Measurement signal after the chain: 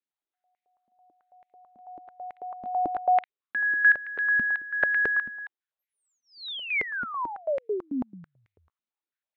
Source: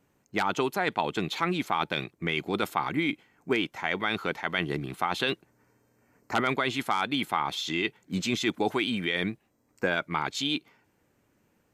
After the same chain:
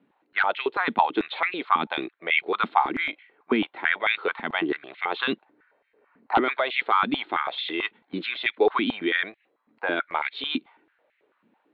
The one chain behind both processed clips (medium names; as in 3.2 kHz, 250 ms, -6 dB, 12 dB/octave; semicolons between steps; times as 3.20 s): elliptic low-pass 3.9 kHz, stop band 40 dB; step-sequenced high-pass 9.1 Hz 230–2100 Hz